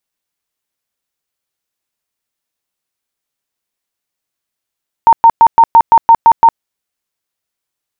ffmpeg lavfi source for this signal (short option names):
-f lavfi -i "aevalsrc='0.891*sin(2*PI*917*mod(t,0.17))*lt(mod(t,0.17),53/917)':d=1.53:s=44100"